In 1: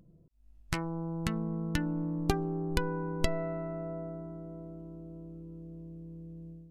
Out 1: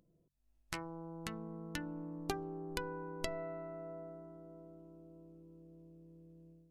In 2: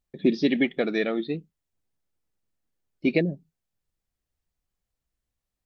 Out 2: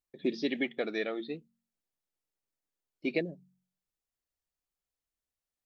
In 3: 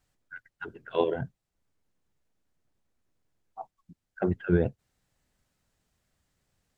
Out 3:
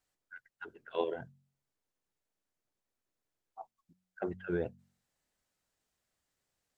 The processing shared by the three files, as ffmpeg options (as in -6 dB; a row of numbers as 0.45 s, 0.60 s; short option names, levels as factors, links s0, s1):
-af "bass=f=250:g=-9,treble=f=4000:g=2,bandreject=f=46.04:t=h:w=4,bandreject=f=92.08:t=h:w=4,bandreject=f=138.12:t=h:w=4,bandreject=f=184.16:t=h:w=4,bandreject=f=230.2:t=h:w=4,volume=0.473"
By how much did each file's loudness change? -8.0 LU, -9.0 LU, -9.5 LU